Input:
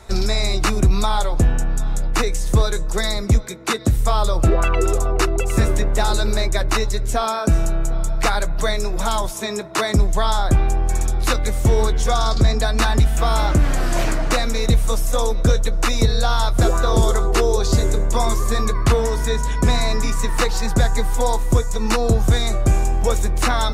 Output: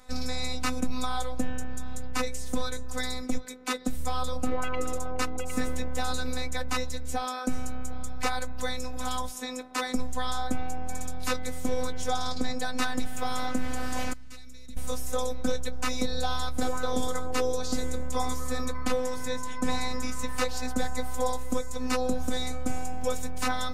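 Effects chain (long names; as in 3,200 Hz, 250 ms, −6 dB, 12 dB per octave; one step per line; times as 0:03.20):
0:14.13–0:14.77: guitar amp tone stack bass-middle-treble 6-0-2
phases set to zero 254 Hz
level −7 dB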